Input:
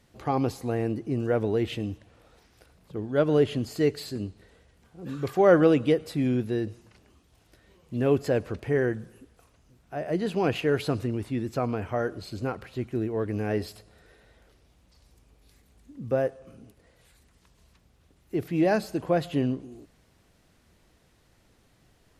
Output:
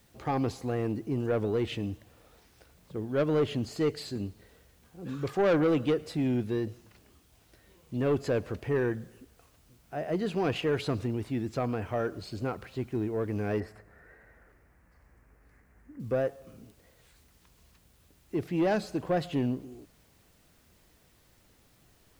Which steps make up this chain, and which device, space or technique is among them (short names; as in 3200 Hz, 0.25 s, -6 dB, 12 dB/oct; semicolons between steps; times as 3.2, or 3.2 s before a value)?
compact cassette (soft clip -18.5 dBFS, distortion -13 dB; LPF 9300 Hz; wow and flutter; white noise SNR 36 dB); 13.6–16 resonant high shelf 2500 Hz -11.5 dB, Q 3; gain -1.5 dB